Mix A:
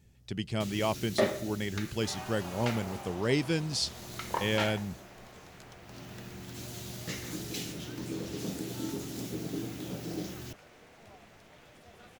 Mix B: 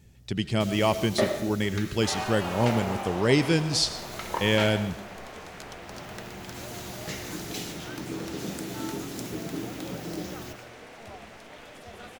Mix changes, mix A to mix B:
speech +5.5 dB; second sound +10.5 dB; reverb: on, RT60 0.75 s

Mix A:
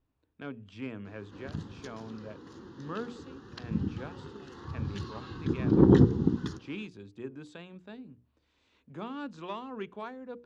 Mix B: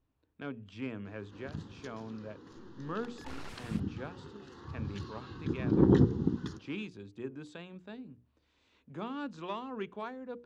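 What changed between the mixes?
first sound -4.0 dB; second sound: unmuted

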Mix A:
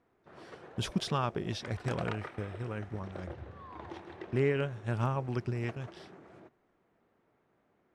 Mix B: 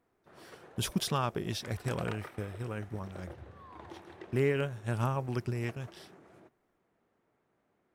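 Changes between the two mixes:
background -3.5 dB; master: remove distance through air 75 m

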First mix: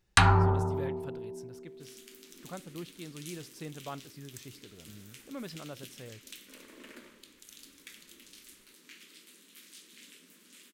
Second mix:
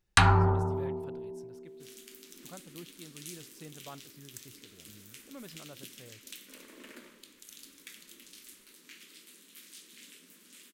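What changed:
speech -6.0 dB; second sound: add treble shelf 8.1 kHz +4 dB

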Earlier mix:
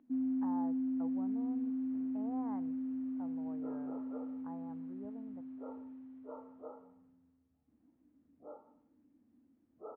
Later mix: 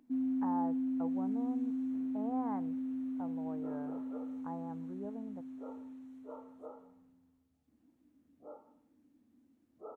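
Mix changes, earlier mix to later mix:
speech +6.5 dB; first sound: remove distance through air 450 m

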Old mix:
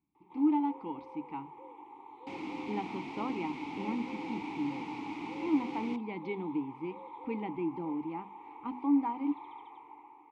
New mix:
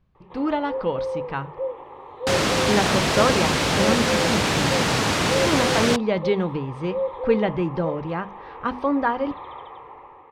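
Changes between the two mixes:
first sound: add distance through air 330 m; second sound +7.0 dB; master: remove vowel filter u

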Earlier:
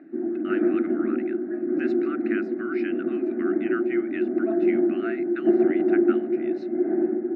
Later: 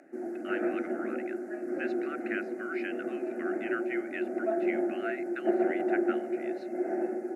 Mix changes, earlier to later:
background: remove cabinet simulation 230–2100 Hz, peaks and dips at 310 Hz +8 dB, 540 Hz -9 dB, 810 Hz -4 dB, 1.3 kHz -5 dB; master: add cabinet simulation 470–9900 Hz, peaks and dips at 1.2 kHz -7 dB, 3.7 kHz -4 dB, 5.3 kHz -3 dB, 8.8 kHz -6 dB

